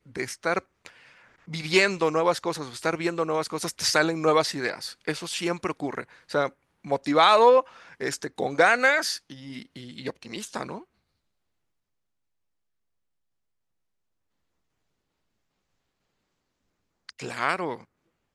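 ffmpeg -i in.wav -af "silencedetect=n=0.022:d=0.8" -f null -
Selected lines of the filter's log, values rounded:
silence_start: 10.78
silence_end: 17.09 | silence_duration: 6.31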